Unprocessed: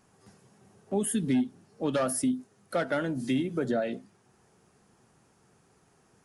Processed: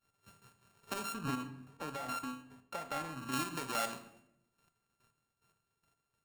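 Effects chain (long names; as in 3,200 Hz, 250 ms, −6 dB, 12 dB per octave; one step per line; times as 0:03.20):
samples sorted by size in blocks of 32 samples
downward expander −51 dBFS
parametric band 240 Hz −9 dB 2.5 octaves
downward compressor 4 to 1, threshold −40 dBFS, peak gain reduction 13 dB
square-wave tremolo 2.4 Hz, depth 65%, duty 25%
rectangular room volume 210 cubic metres, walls mixed, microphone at 0.31 metres
brickwall limiter −33 dBFS, peak gain reduction 9 dB
0:01.14–0:03.32: high-shelf EQ 2,200 Hz −10.5 dB
level +11 dB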